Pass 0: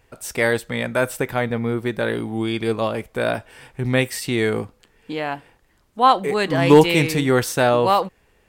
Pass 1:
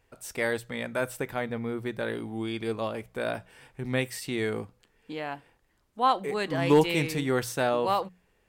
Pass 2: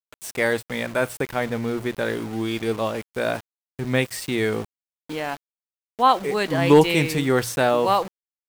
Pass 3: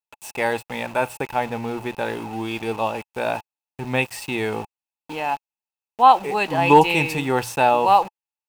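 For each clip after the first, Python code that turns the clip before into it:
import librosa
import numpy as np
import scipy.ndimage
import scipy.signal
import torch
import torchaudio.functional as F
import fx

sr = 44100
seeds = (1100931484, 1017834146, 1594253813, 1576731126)

y1 = fx.hum_notches(x, sr, base_hz=60, count=3)
y1 = F.gain(torch.from_numpy(y1), -9.0).numpy()
y2 = np.where(np.abs(y1) >= 10.0 ** (-40.5 / 20.0), y1, 0.0)
y2 = F.gain(torch.from_numpy(y2), 6.5).numpy()
y3 = fx.small_body(y2, sr, hz=(860.0, 2600.0), ring_ms=25, db=16)
y3 = F.gain(torch.from_numpy(y3), -3.0).numpy()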